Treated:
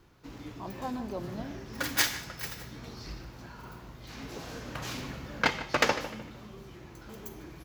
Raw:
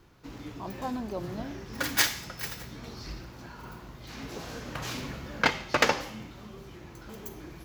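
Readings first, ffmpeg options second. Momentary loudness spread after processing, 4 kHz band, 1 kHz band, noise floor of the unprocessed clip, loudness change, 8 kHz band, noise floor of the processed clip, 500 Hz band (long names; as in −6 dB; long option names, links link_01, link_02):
20 LU, −2.0 dB, −2.0 dB, −48 dBFS, −2.0 dB, −2.0 dB, −49 dBFS, −1.5 dB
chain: -filter_complex "[0:a]asplit=2[link_01][link_02];[link_02]adelay=151,lowpass=frequency=3100:poles=1,volume=-13dB,asplit=2[link_03][link_04];[link_04]adelay=151,lowpass=frequency=3100:poles=1,volume=0.38,asplit=2[link_05][link_06];[link_06]adelay=151,lowpass=frequency=3100:poles=1,volume=0.38,asplit=2[link_07][link_08];[link_08]adelay=151,lowpass=frequency=3100:poles=1,volume=0.38[link_09];[link_01][link_03][link_05][link_07][link_09]amix=inputs=5:normalize=0,volume=-2dB"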